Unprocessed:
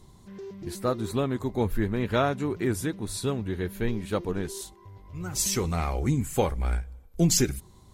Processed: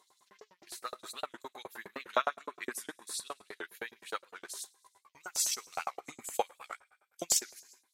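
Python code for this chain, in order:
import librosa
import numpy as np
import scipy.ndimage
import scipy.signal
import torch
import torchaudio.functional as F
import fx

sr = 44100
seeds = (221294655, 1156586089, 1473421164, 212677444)

y = fx.rev_gated(x, sr, seeds[0], gate_ms=440, shape='falling', drr_db=11.0)
y = fx.filter_lfo_highpass(y, sr, shape='saw_up', hz=9.7, low_hz=600.0, high_hz=7600.0, q=1.6)
y = fx.transient(y, sr, attack_db=3, sustain_db=-10)
y = fx.small_body(y, sr, hz=(210.0, 1100.0), ring_ms=25, db=8, at=(1.69, 3.29))
y = fx.record_warp(y, sr, rpm=78.0, depth_cents=160.0)
y = y * librosa.db_to_amplitude(-6.0)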